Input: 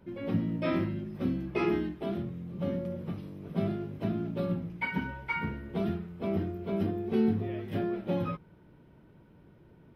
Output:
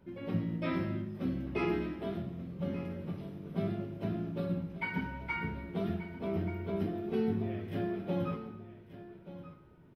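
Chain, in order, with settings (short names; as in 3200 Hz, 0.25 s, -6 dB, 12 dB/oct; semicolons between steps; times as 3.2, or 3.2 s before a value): on a send: echo 1.182 s -14.5 dB; on the sum: plate-style reverb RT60 0.91 s, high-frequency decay 1×, DRR 6 dB; gain -4 dB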